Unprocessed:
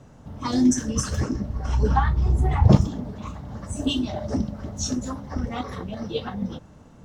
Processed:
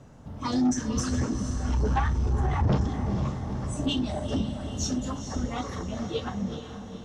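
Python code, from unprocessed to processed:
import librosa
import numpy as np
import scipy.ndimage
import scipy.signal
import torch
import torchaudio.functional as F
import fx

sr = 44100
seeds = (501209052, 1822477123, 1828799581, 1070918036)

y = fx.echo_diffused(x, sr, ms=459, feedback_pct=57, wet_db=-10.0)
y = 10.0 ** (-17.0 / 20.0) * np.tanh(y / 10.0 ** (-17.0 / 20.0))
y = fx.env_lowpass_down(y, sr, base_hz=2900.0, full_db=-14.5)
y = F.gain(torch.from_numpy(y), -1.5).numpy()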